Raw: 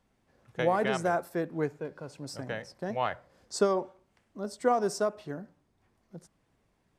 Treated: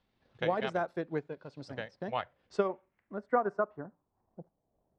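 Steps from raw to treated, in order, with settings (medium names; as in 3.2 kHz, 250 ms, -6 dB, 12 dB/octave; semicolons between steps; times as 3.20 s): tempo 1.4×; dynamic bell 4.4 kHz, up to -4 dB, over -55 dBFS, Q 1.2; transient shaper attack +2 dB, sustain -6 dB; low-pass sweep 3.9 kHz -> 680 Hz, 2.06–4.61 s; trim -4.5 dB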